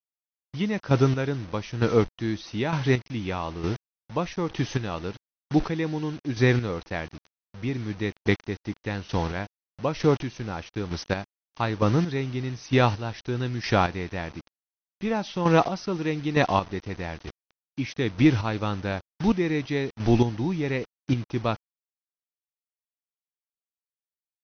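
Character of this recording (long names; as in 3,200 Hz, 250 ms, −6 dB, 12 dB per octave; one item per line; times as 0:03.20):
a quantiser's noise floor 6 bits, dither none
chopped level 1.1 Hz, depth 60%, duty 25%
AC-3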